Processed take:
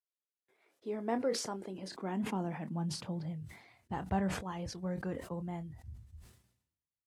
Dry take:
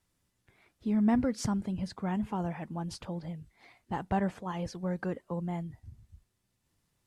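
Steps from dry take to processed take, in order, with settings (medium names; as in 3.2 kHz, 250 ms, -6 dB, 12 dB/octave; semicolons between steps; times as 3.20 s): expander -60 dBFS; high-pass sweep 430 Hz -> 63 Hz, 1.52–4.20 s; doubling 26 ms -13 dB; decay stretcher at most 78 dB/s; trim -5 dB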